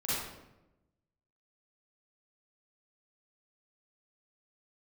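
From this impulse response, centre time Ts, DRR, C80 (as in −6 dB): 92 ms, −11.0 dB, 0.5 dB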